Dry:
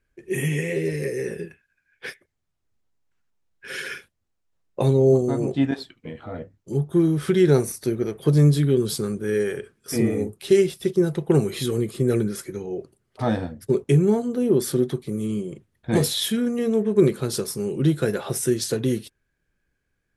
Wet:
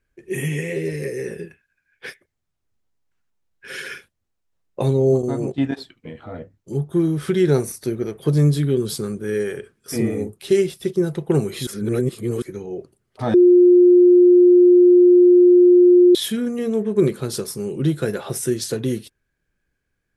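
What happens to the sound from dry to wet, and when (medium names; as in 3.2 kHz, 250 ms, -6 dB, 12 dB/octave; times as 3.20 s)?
5.22–5.77 s: gate -27 dBFS, range -9 dB
11.67–12.42 s: reverse
13.34–16.15 s: bleep 356 Hz -7.5 dBFS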